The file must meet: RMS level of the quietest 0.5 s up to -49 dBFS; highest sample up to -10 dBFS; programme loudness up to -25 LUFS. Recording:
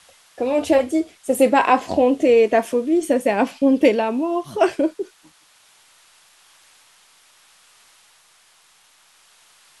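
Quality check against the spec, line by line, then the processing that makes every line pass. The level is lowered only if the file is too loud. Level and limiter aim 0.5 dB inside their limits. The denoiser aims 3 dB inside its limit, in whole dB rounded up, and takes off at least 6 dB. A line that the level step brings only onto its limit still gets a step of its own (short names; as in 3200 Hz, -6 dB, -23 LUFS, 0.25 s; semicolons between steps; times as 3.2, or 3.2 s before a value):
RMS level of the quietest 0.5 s -55 dBFS: OK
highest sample -3.0 dBFS: fail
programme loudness -18.5 LUFS: fail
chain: gain -7 dB; limiter -10.5 dBFS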